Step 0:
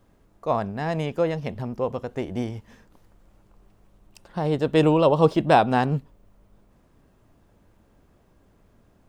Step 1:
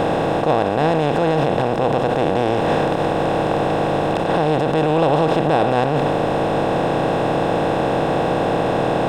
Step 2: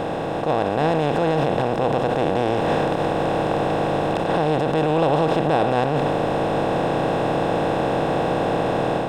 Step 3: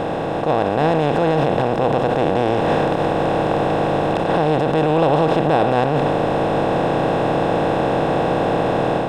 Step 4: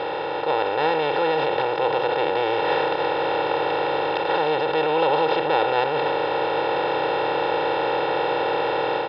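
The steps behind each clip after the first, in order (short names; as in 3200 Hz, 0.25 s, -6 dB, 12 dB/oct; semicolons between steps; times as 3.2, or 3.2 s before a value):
per-bin compression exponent 0.2; low shelf 110 Hz +7 dB; limiter -7 dBFS, peak gain reduction 9 dB
AGC gain up to 6.5 dB; gain -7 dB
high shelf 5100 Hz -4.5 dB; gain +3 dB
HPF 1100 Hz 6 dB/oct; comb 2.2 ms, depth 90%; downsampling 11025 Hz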